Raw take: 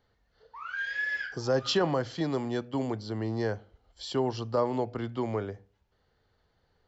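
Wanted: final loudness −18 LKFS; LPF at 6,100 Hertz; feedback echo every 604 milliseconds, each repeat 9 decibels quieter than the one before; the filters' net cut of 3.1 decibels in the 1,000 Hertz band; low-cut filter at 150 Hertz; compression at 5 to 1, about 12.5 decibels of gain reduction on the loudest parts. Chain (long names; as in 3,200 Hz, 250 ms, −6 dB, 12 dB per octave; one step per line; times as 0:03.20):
high-pass filter 150 Hz
low-pass filter 6,100 Hz
parametric band 1,000 Hz −4 dB
downward compressor 5 to 1, threshold −37 dBFS
repeating echo 604 ms, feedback 35%, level −9 dB
level +22.5 dB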